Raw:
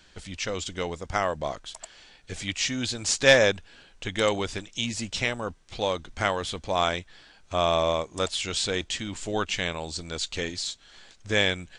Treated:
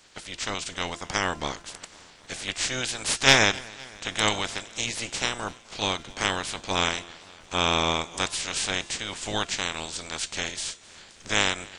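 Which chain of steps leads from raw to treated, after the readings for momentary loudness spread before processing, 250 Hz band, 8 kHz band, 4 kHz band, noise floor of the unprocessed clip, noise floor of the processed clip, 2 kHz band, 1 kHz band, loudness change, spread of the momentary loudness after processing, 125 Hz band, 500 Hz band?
12 LU, -1.5 dB, +3.5 dB, +3.0 dB, -56 dBFS, -52 dBFS, +1.5 dB, +1.0 dB, +0.5 dB, 13 LU, -1.5 dB, -6.5 dB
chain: spectral limiter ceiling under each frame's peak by 22 dB; de-hum 343.4 Hz, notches 27; warbling echo 0.257 s, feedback 69%, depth 62 cents, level -23 dB

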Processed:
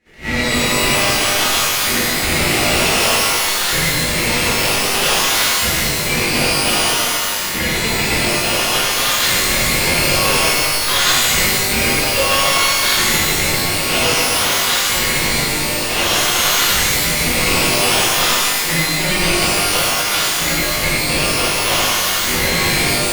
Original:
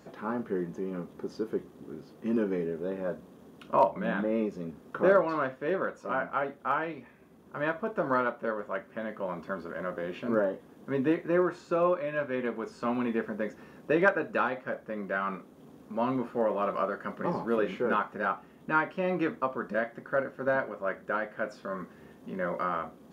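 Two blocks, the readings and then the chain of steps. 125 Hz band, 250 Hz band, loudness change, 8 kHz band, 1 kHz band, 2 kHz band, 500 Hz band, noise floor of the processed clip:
+17.5 dB, +8.5 dB, +17.0 dB, n/a, +12.5 dB, +19.0 dB, +7.0 dB, -19 dBFS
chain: spectral whitening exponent 0.1; recorder AGC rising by 67 dB/s; LFO band-pass saw up 0.54 Hz 810–2800 Hz; ring modulator 1100 Hz; de-hum 51.51 Hz, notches 39; shimmer reverb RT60 1.9 s, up +12 st, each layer -2 dB, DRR -10 dB; gain +4 dB

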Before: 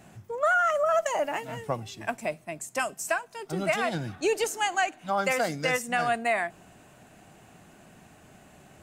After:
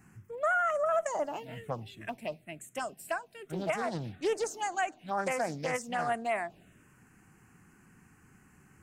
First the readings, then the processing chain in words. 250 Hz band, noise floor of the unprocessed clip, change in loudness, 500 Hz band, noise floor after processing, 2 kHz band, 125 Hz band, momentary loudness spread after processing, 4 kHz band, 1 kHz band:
-4.5 dB, -55 dBFS, -5.5 dB, -4.5 dB, -62 dBFS, -7.5 dB, -4.5 dB, 13 LU, -9.5 dB, -5.0 dB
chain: envelope phaser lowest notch 590 Hz, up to 4900 Hz, full sweep at -20.5 dBFS; Doppler distortion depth 0.29 ms; gain -4 dB

